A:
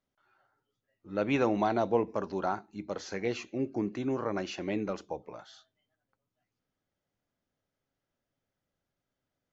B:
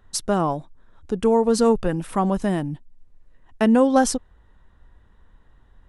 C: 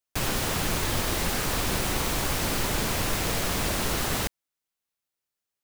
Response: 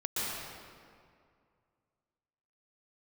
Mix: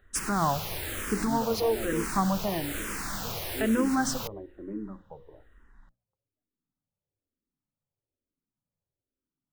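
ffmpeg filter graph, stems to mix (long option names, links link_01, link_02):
-filter_complex "[0:a]lowpass=frequency=1000:width=0.5412,lowpass=frequency=1000:width=1.3066,equalizer=frequency=700:width_type=o:width=0.84:gain=-10.5,volume=-0.5dB[link_01];[1:a]volume=-1.5dB[link_02];[2:a]highshelf=frequency=8900:gain=6,volume=-6.5dB[link_03];[link_02][link_03]amix=inputs=2:normalize=0,equalizer=frequency=1500:width_type=o:width=0.88:gain=5,alimiter=limit=-14dB:level=0:latency=1:release=195,volume=0dB[link_04];[link_01][link_04]amix=inputs=2:normalize=0,bandreject=frequency=60:width_type=h:width=6,bandreject=frequency=120:width_type=h:width=6,bandreject=frequency=180:width_type=h:width=6,bandreject=frequency=240:width_type=h:width=6,bandreject=frequency=300:width_type=h:width=6,bandreject=frequency=360:width_type=h:width=6,bandreject=frequency=420:width_type=h:width=6,bandreject=frequency=480:width_type=h:width=6,bandreject=frequency=540:width_type=h:width=6,asplit=2[link_05][link_06];[link_06]afreqshift=-1.1[link_07];[link_05][link_07]amix=inputs=2:normalize=1"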